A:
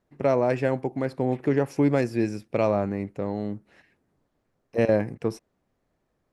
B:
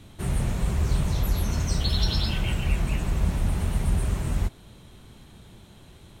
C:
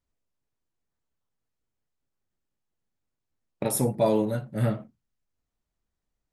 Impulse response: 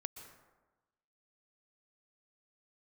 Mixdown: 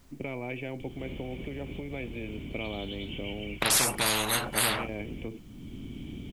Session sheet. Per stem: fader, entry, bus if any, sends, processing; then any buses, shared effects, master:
-9.5 dB, 0.00 s, bus A, no send, dry
-8.5 dB, 0.80 s, bus A, no send, upward compressor, threshold -36 dBFS; auto duck -8 dB, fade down 1.85 s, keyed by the first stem
+0.5 dB, 0.00 s, no bus, no send, dry
bus A: 0.0 dB, vocal tract filter i; limiter -35 dBFS, peak gain reduction 9.5 dB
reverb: off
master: spectral compressor 10:1

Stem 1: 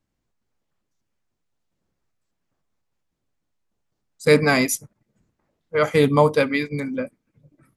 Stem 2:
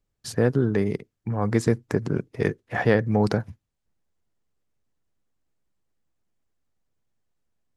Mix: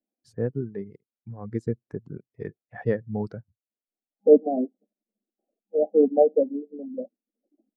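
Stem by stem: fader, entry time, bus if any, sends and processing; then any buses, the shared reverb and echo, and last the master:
+2.0 dB, 0.00 s, no send, FFT band-pass 200–810 Hz
-2.0 dB, 0.00 s, no send, spectral expander 1.5:1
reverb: off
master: reverb removal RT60 0.76 s; upward expander 1.5:1, over -26 dBFS

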